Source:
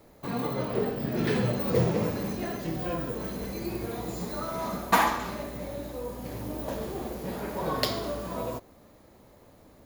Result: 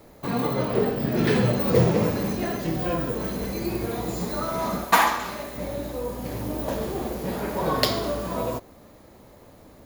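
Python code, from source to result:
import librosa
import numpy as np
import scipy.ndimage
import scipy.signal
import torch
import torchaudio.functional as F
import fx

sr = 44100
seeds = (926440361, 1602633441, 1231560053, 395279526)

y = fx.low_shelf(x, sr, hz=470.0, db=-8.5, at=(4.84, 5.58))
y = F.gain(torch.from_numpy(y), 5.5).numpy()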